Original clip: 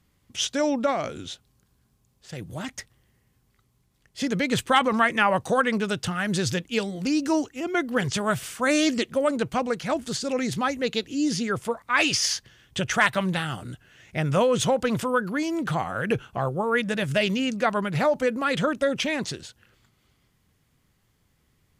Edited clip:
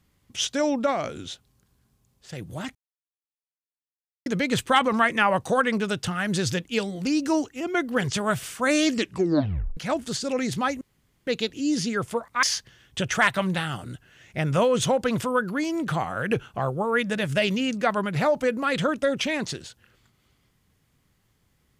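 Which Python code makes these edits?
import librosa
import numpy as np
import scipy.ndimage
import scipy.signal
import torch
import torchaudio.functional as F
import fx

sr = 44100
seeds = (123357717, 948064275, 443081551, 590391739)

y = fx.edit(x, sr, fx.silence(start_s=2.75, length_s=1.51),
    fx.tape_stop(start_s=8.97, length_s=0.8),
    fx.insert_room_tone(at_s=10.81, length_s=0.46),
    fx.cut(start_s=11.97, length_s=0.25), tone=tone)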